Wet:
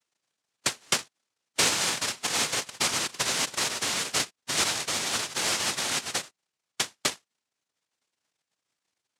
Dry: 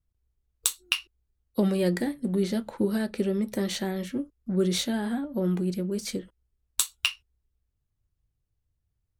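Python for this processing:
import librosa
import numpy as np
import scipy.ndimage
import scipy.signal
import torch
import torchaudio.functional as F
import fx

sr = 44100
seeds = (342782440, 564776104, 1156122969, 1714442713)

y = fx.noise_vocoder(x, sr, seeds[0], bands=1)
y = fx.cheby_harmonics(y, sr, harmonics=(3,), levels_db=(-32,), full_scale_db=-8.5)
y = fx.rider(y, sr, range_db=10, speed_s=0.5)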